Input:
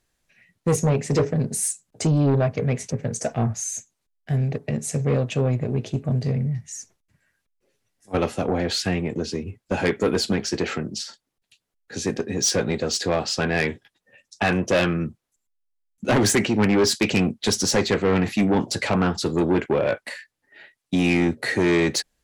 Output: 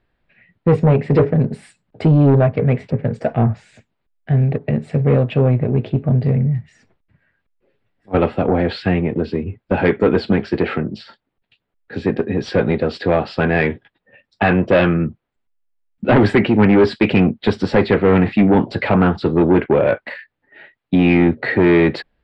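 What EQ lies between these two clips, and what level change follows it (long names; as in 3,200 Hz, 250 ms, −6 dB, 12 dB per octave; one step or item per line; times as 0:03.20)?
moving average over 7 samples
high-frequency loss of the air 170 metres
notch filter 1,100 Hz, Q 27
+7.5 dB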